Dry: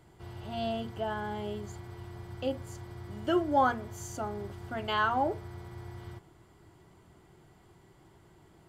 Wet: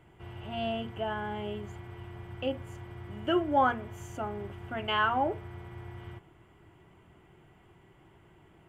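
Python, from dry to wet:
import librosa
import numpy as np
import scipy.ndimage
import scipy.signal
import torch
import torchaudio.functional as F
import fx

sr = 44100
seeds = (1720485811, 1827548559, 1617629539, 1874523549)

y = fx.high_shelf_res(x, sr, hz=3500.0, db=-7.0, q=3.0)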